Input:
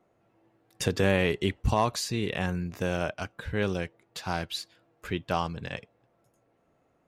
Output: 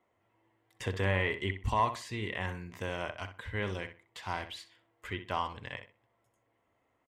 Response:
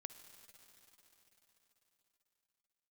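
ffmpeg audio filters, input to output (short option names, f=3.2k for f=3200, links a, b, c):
-filter_complex "[0:a]equalizer=f=100:t=o:w=0.33:g=7,equalizer=f=160:t=o:w=0.33:g=-11,equalizer=f=1k:t=o:w=0.33:g=10,equalizer=f=2k:t=o:w=0.33:g=12,equalizer=f=3.15k:t=o:w=0.33:g=9,equalizer=f=8k:t=o:w=0.33:g=6,acrossover=split=2600[a][b];[b]acompressor=threshold=-36dB:ratio=4:attack=1:release=60[c];[a][c]amix=inputs=2:normalize=0,asplit=2[d][e];[e]adelay=63,lowpass=f=3.2k:p=1,volume=-9.5dB,asplit=2[f][g];[g]adelay=63,lowpass=f=3.2k:p=1,volume=0.25,asplit=2[h][i];[i]adelay=63,lowpass=f=3.2k:p=1,volume=0.25[j];[d][f][h][j]amix=inputs=4:normalize=0,volume=-8.5dB"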